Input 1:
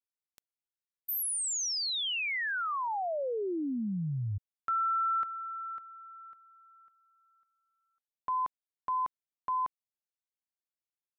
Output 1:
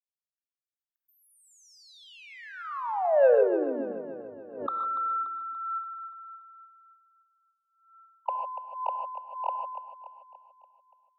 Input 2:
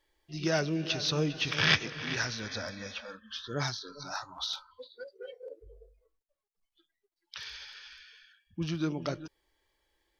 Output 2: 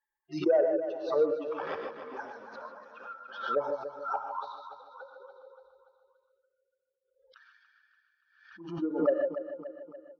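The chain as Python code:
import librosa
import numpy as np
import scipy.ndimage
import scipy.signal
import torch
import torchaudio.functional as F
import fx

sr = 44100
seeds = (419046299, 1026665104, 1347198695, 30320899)

y = fx.bin_expand(x, sr, power=2.0)
y = fx.band_shelf(y, sr, hz=580.0, db=13.0, octaves=2.9)
y = fx.rider(y, sr, range_db=3, speed_s=2.0)
y = fx.dynamic_eq(y, sr, hz=150.0, q=0.94, threshold_db=-43.0, ratio=4.0, max_db=-4)
y = fx.auto_wah(y, sr, base_hz=530.0, top_hz=1700.0, q=6.6, full_db=-25.5, direction='down')
y = 10.0 ** (-21.5 / 20.0) * np.tanh(y / 10.0 ** (-21.5 / 20.0))
y = fx.echo_feedback(y, sr, ms=288, feedback_pct=52, wet_db=-11.0)
y = fx.rev_gated(y, sr, seeds[0], gate_ms=170, shape='rising', drr_db=4.5)
y = fx.pre_swell(y, sr, db_per_s=84.0)
y = y * librosa.db_to_amplitude(6.5)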